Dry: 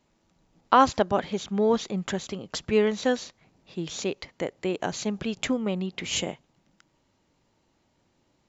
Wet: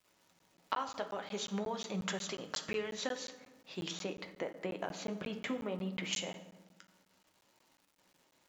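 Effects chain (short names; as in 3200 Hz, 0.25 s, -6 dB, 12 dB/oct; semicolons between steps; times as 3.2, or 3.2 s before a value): 3.91–6.13 LPF 1300 Hz 6 dB/oct; gate with hold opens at -59 dBFS; HPF 720 Hz 6 dB/oct; compressor 8:1, threshold -35 dBFS, peak gain reduction 20 dB; crackle 230/s -57 dBFS; flange 0.5 Hz, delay 6.2 ms, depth 5 ms, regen -60%; reverb RT60 1.2 s, pre-delay 3 ms, DRR 7.5 dB; crackling interface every 0.18 s, samples 512, zero, from 0.39; gain +5 dB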